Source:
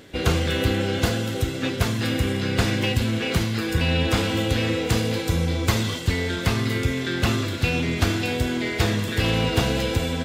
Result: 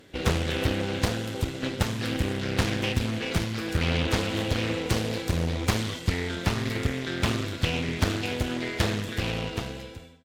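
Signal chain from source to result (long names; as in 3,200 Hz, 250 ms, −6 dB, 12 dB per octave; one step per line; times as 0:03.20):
fade-out on the ending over 1.29 s
harmonic generator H 7 −26 dB, 8 −25 dB, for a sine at −4.5 dBFS
highs frequency-modulated by the lows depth 0.75 ms
level −2.5 dB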